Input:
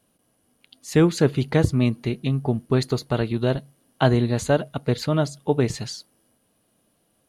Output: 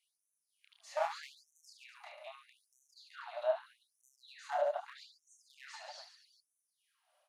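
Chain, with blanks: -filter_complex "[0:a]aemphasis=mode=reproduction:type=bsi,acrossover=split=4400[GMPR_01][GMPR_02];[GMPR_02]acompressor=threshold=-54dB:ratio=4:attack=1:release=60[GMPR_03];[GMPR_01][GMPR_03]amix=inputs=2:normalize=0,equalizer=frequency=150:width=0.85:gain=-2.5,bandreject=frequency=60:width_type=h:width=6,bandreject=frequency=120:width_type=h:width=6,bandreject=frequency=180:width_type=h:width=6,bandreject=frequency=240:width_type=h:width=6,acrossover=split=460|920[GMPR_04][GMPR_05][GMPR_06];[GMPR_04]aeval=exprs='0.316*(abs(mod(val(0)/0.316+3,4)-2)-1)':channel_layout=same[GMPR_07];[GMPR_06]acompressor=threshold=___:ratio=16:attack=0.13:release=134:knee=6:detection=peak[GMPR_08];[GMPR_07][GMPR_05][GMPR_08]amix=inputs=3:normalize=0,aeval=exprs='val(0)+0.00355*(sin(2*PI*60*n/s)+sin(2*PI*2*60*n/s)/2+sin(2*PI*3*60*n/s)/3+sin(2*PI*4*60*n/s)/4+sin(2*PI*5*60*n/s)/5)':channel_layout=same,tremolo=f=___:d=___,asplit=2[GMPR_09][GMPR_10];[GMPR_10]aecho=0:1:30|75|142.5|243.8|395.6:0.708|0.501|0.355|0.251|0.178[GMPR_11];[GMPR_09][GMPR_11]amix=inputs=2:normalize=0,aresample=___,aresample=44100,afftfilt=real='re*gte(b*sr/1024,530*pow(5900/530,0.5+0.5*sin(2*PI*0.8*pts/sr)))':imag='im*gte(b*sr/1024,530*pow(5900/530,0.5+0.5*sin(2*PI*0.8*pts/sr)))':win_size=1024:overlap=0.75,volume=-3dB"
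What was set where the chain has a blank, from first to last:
-42dB, 3.5, 0.37, 32000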